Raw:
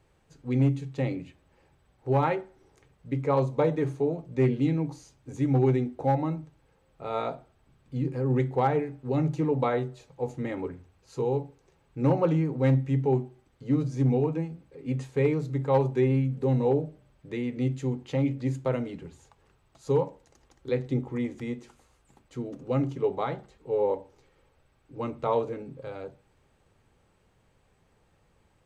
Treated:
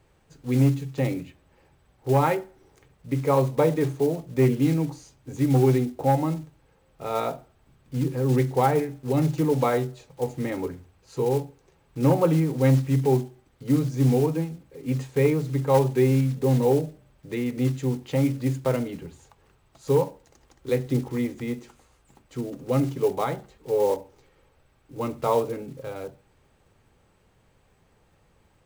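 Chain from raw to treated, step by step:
one scale factor per block 5 bits
level +3.5 dB

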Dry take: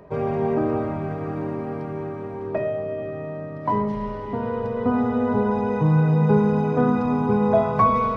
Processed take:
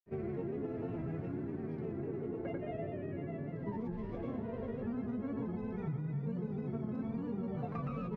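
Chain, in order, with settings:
flat-topped bell 830 Hz −10.5 dB
granular cloud, pitch spread up and down by 3 semitones
high-shelf EQ 2,900 Hz −10.5 dB
slap from a distant wall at 290 metres, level −7 dB
downward compressor 6 to 1, threshold −30 dBFS, peak gain reduction 14 dB
tuned comb filter 670 Hz, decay 0.17 s, harmonics all, mix 70%
single-tap delay 119 ms −11.5 dB
level +4 dB

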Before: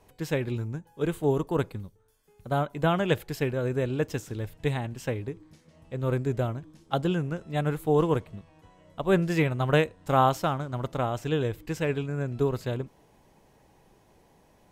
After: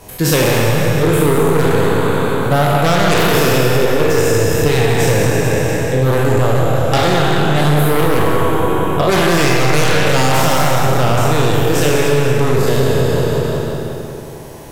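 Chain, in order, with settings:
peak hold with a decay on every bin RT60 2.74 s
parametric band 110 Hz +3 dB 0.77 octaves
in parallel at −8 dB: sine wavefolder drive 15 dB, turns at −5.5 dBFS
on the sum: high-shelf EQ 5,800 Hz +10.5 dB
on a send: feedback echo with a low-pass in the loop 183 ms, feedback 64%, low-pass 3,300 Hz, level −5.5 dB
on the sum: four-comb reverb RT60 0.87 s, combs from 27 ms, DRR 5 dB
downward compressor 3 to 1, threshold −15 dBFS, peak gain reduction 9 dB
level +4 dB

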